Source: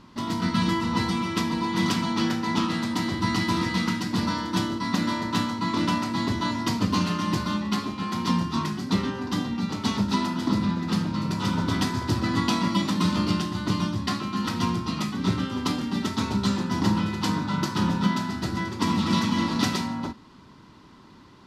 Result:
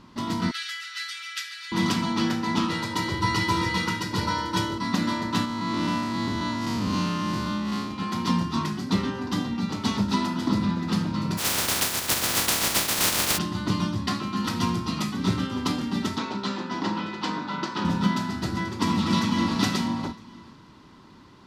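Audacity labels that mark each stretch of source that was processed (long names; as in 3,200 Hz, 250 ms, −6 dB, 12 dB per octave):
0.510000	1.720000	Butterworth high-pass 1,400 Hz 72 dB per octave
2.700000	4.780000	comb filter 2.1 ms
5.450000	7.910000	spectrum smeared in time width 128 ms
11.370000	13.370000	compressing power law on the bin magnitudes exponent 0.16
14.440000	15.470000	high-shelf EQ 6,600 Hz +4.5 dB
16.180000	17.850000	band-pass filter 290–4,600 Hz
18.920000	19.590000	delay throw 480 ms, feedback 20%, level −10 dB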